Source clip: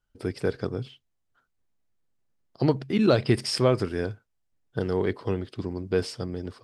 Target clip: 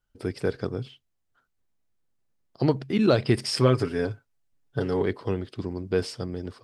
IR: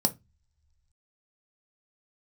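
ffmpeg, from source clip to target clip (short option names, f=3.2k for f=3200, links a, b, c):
-filter_complex "[0:a]asettb=1/sr,asplit=3[a][b][c];[a]atrim=end=3.574[d];[b]atrim=start=3.57:end=5.03,asetpts=PTS-STARTPTS,afade=t=in:d=0.004:c=qsin,afade=t=out:st=1.456:d=0.004:c=qsin,aecho=1:1:7.2:0.66,atrim=end_sample=64386[e];[c]atrim=start=5.026[f];[d][e]acrossfade=d=0.004:c1=hsin:c2=qsin[g];[g][f]acrossfade=d=0.004:c1=qsin:c2=hsin"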